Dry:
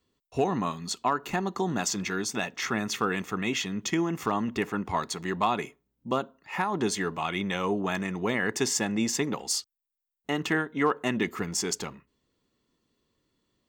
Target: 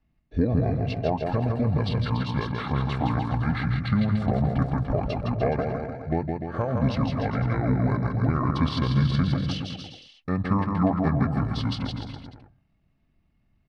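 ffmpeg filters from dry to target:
-af "aemphasis=mode=reproduction:type=bsi,aecho=1:1:160|296|411.6|509.9|593.4:0.631|0.398|0.251|0.158|0.1,asetrate=27781,aresample=44100,atempo=1.5874"

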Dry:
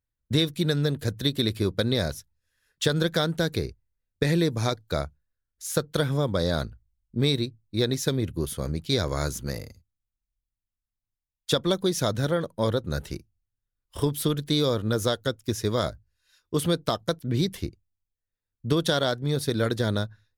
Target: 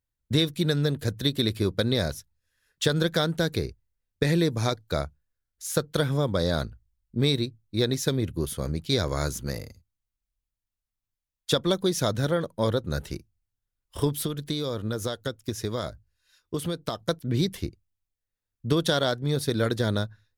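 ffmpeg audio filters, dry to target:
-filter_complex "[0:a]asettb=1/sr,asplit=3[s0][s1][s2];[s0]atrim=end=14.214[s3];[s1]atrim=start=14.21:end=16.98,asetpts=PTS-STARTPTS,afade=t=in:d=0.004:c=qsin,afade=t=out:st=2.766:d=0.004:c=qsin,acompressor=threshold=0.0501:ratio=6[s4];[s2]atrim=start=16.976[s5];[s3][s4]acrossfade=d=0.004:c1=hsin:c2=qsin[s6];[s6][s5]acrossfade=d=0.004:c1=qsin:c2=hsin"

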